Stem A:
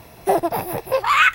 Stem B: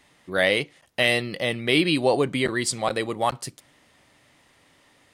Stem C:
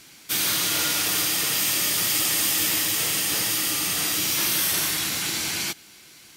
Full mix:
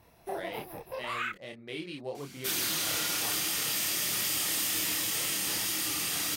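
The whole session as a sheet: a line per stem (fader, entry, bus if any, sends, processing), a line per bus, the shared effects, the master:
−13.5 dB, 0.00 s, no send, no processing
−14.5 dB, 0.00 s, no send, adaptive Wiener filter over 15 samples
0.0 dB, 2.15 s, no send, no processing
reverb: not used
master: multi-voice chorus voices 4, 1.5 Hz, delay 28 ms, depth 3 ms; downward compressor 1.5 to 1, threshold −35 dBFS, peak gain reduction 4.5 dB

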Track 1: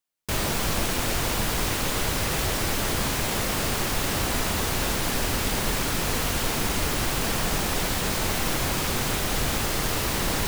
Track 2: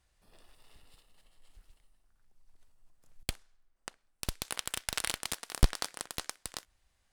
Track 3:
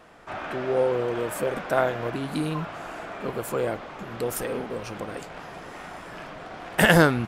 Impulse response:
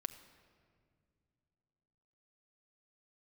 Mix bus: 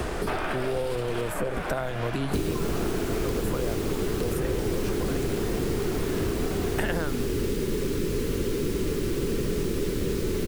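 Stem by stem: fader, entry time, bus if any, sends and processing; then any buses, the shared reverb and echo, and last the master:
−2.5 dB, 2.05 s, bus A, send −7 dB, no processing
−2.0 dB, 0.00 s, bus A, send −11 dB, multiband upward and downward compressor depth 100%
−1.5 dB, 0.00 s, no bus, no send, downward compressor 2 to 1, threshold −30 dBFS, peak gain reduction 10 dB
bus A: 0.0 dB, low-pass with resonance 410 Hz, resonance Q 4.9; brickwall limiter −21.5 dBFS, peak gain reduction 6.5 dB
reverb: on, pre-delay 6 ms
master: multiband upward and downward compressor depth 100%

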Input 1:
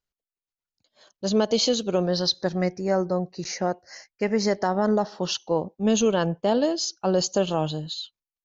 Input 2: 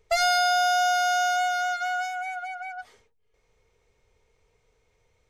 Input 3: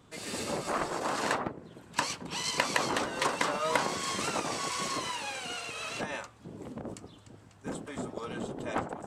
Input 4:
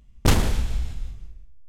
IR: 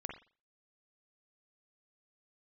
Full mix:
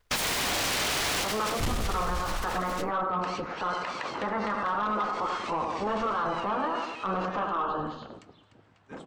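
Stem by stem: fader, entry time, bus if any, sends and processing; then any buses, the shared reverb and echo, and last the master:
0.0 dB, 0.00 s, send −5.5 dB, echo send −8.5 dB, ceiling on every frequency bin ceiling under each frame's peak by 20 dB; low-pass with resonance 1,200 Hz, resonance Q 4.9; string-ensemble chorus
−9.5 dB, 0.00 s, send −8 dB, no echo send, parametric band 540 Hz +6 dB 0.79 octaves; comb filter 1.4 ms, depth 58%; short delay modulated by noise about 1,300 Hz, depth 0.47 ms
−0.5 dB, 1.25 s, no send, no echo send, low-pass filter 3,400 Hz 12 dB per octave; low-shelf EQ 470 Hz −8 dB
+1.0 dB, 1.35 s, no send, no echo send, no processing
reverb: on, pre-delay 43 ms
echo: repeating echo 97 ms, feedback 45%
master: soft clipping −10 dBFS, distortion −17 dB; brickwall limiter −22 dBFS, peak gain reduction 11.5 dB

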